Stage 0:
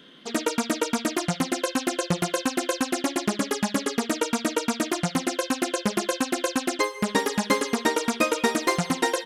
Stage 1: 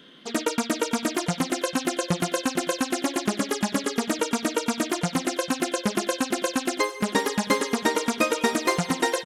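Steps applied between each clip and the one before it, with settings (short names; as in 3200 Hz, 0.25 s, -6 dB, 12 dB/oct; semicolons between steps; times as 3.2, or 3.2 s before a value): echo 0.448 s -16.5 dB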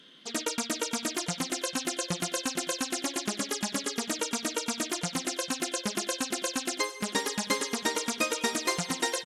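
bell 6500 Hz +9 dB 2.7 oct; gain -8.5 dB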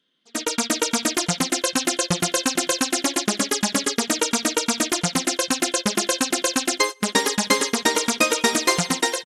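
gate -34 dBFS, range -20 dB; AGC gain up to 7 dB; gain +3 dB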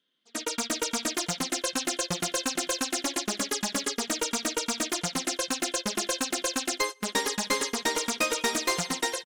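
low shelf 170 Hz -7.5 dB; hard clip -13.5 dBFS, distortion -14 dB; gain -6 dB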